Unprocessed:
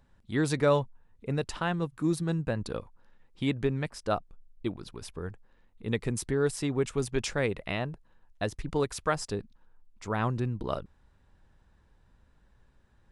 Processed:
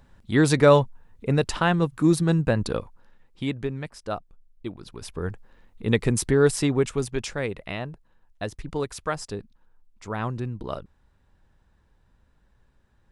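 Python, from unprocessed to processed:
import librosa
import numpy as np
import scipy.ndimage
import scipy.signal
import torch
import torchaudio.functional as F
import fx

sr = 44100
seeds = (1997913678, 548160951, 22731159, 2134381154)

y = fx.gain(x, sr, db=fx.line((2.65, 8.5), (3.72, -1.5), (4.71, -1.5), (5.3, 8.5), (6.6, 8.5), (7.27, 0.0)))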